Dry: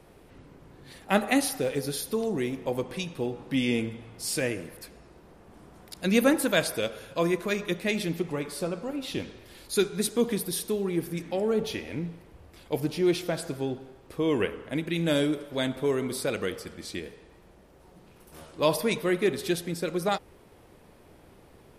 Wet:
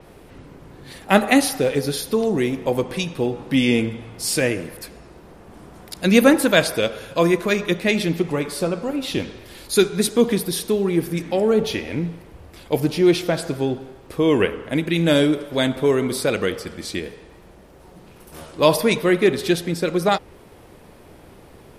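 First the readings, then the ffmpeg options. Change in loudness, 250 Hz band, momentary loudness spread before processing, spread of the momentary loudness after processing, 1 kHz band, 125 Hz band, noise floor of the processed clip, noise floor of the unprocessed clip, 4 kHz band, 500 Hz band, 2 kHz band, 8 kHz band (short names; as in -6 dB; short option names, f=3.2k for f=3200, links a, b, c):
+8.5 dB, +8.5 dB, 12 LU, 12 LU, +8.5 dB, +8.5 dB, -47 dBFS, -55 dBFS, +8.0 dB, +8.5 dB, +8.5 dB, +6.5 dB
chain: -af "adynamicequalizer=threshold=0.00398:dfrequency=6500:dqfactor=0.7:tfrequency=6500:tqfactor=0.7:attack=5:release=100:ratio=0.375:range=3:mode=cutabove:tftype=highshelf,volume=8.5dB"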